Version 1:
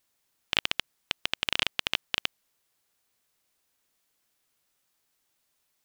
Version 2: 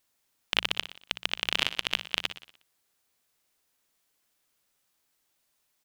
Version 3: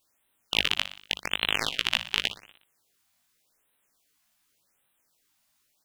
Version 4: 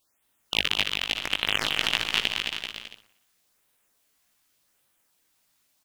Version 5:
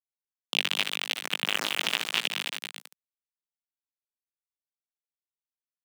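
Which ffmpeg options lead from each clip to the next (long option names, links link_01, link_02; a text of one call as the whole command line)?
ffmpeg -i in.wav -filter_complex "[0:a]bandreject=frequency=60:width_type=h:width=6,bandreject=frequency=120:width_type=h:width=6,bandreject=frequency=180:width_type=h:width=6,asplit=2[link_01][link_02];[link_02]aecho=0:1:60|120|180|240|300|360:0.251|0.133|0.0706|0.0374|0.0198|0.0105[link_03];[link_01][link_03]amix=inputs=2:normalize=0" out.wav
ffmpeg -i in.wav -af "flanger=delay=17.5:depth=3:speed=0.5,afftfilt=real='re*(1-between(b*sr/1024,380*pow(5900/380,0.5+0.5*sin(2*PI*0.87*pts/sr))/1.41,380*pow(5900/380,0.5+0.5*sin(2*PI*0.87*pts/sr))*1.41))':imag='im*(1-between(b*sr/1024,380*pow(5900/380,0.5+0.5*sin(2*PI*0.87*pts/sr))/1.41,380*pow(5900/380,0.5+0.5*sin(2*PI*0.87*pts/sr))*1.41))':win_size=1024:overlap=0.75,volume=6.5dB" out.wav
ffmpeg -i in.wav -af "aecho=1:1:220|385|508.8|601.6|671.2:0.631|0.398|0.251|0.158|0.1" out.wav
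ffmpeg -i in.wav -af "aeval=exprs='val(0)*gte(abs(val(0)),0.0596)':channel_layout=same,highpass=frequency=180:width=0.5412,highpass=frequency=180:width=1.3066,volume=-2dB" out.wav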